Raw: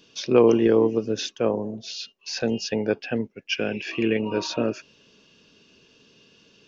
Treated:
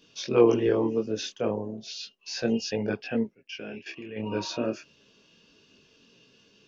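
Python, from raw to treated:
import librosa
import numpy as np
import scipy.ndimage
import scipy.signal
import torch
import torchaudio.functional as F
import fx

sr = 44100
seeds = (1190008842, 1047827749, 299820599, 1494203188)

y = fx.level_steps(x, sr, step_db=17, at=(3.34, 4.16), fade=0.02)
y = fx.detune_double(y, sr, cents=12)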